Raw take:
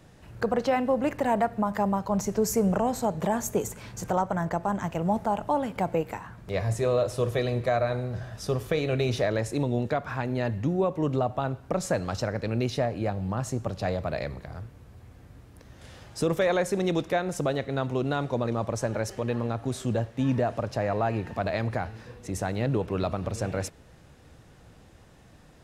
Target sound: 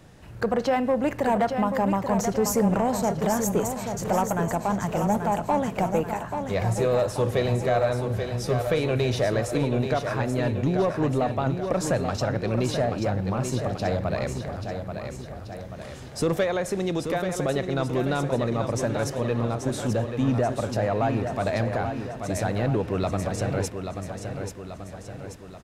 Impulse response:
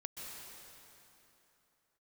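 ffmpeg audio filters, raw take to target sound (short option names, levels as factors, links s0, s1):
-filter_complex "[0:a]asettb=1/sr,asplit=3[s0][s1][s2];[s0]atrim=end=16.434[s3];[s1]atrim=start=16.43:end=17.49,asetpts=PTS-STARTPTS,afade=t=in:d=0.004:c=qsin,afade=t=out:st=1.056:d=0.004:c=qsin,acompressor=threshold=0.0562:ratio=6[s4];[s2]atrim=start=17.486[s5];[s3][s4]acrossfade=d=0.004:c1=hsin:c2=qsin[s6];[s6][s5]acrossfade=d=0.004:c1=qsin:c2=hsin,asoftclip=type=tanh:threshold=0.141,aecho=1:1:834|1668|2502|3336|4170|5004:0.447|0.237|0.125|0.0665|0.0352|0.0187,volume=1.41"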